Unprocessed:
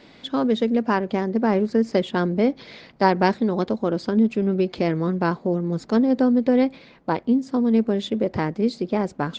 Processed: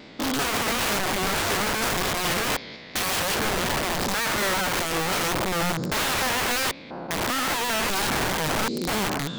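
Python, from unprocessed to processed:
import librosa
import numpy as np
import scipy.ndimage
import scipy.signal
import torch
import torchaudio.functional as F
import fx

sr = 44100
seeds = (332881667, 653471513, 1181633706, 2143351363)

y = fx.spec_steps(x, sr, hold_ms=200)
y = fx.vibrato(y, sr, rate_hz=5.5, depth_cents=60.0)
y = (np.mod(10.0 ** (25.5 / 20.0) * y + 1.0, 2.0) - 1.0) / 10.0 ** (25.5 / 20.0)
y = y * 10.0 ** (5.5 / 20.0)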